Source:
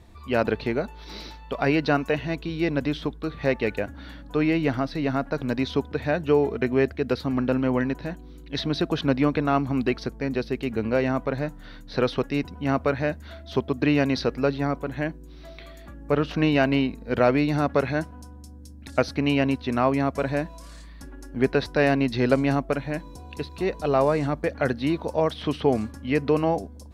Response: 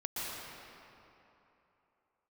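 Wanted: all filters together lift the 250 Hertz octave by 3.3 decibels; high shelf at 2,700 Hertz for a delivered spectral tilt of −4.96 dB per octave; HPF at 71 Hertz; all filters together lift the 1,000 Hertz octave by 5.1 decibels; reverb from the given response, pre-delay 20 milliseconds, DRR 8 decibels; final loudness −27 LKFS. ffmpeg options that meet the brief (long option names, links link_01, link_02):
-filter_complex "[0:a]highpass=71,equalizer=frequency=250:width_type=o:gain=3.5,equalizer=frequency=1000:width_type=o:gain=6,highshelf=frequency=2700:gain=6,asplit=2[link_01][link_02];[1:a]atrim=start_sample=2205,adelay=20[link_03];[link_02][link_03]afir=irnorm=-1:irlink=0,volume=-12dB[link_04];[link_01][link_04]amix=inputs=2:normalize=0,volume=-5.5dB"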